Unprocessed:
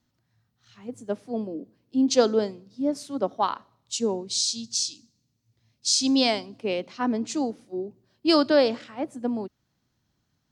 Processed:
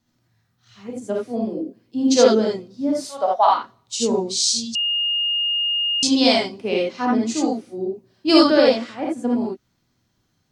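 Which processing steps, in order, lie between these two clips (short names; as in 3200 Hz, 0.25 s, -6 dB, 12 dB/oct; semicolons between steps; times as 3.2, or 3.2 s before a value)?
3.01–3.49 resonant low shelf 450 Hz -14 dB, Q 3; non-linear reverb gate 0.1 s rising, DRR -3 dB; 4.75–6.03 bleep 2840 Hz -20 dBFS; gain +1.5 dB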